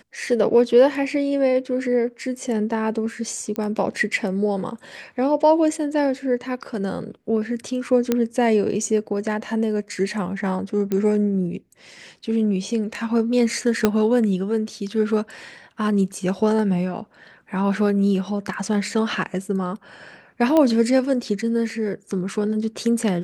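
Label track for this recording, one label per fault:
3.560000	3.560000	pop -14 dBFS
8.120000	8.120000	pop -6 dBFS
10.920000	10.920000	pop -12 dBFS
13.850000	13.850000	pop -3 dBFS
20.570000	20.570000	pop -8 dBFS

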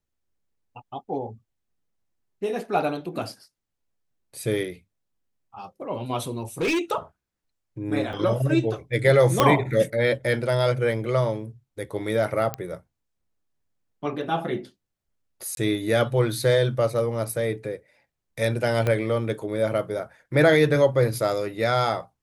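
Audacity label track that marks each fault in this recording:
6.610000	6.810000	clipped -20 dBFS
8.130000	8.130000	dropout 3.2 ms
9.400000	9.400000	pop -2 dBFS
12.540000	12.540000	pop -12 dBFS
15.550000	15.570000	dropout 22 ms
18.870000	18.870000	pop -12 dBFS

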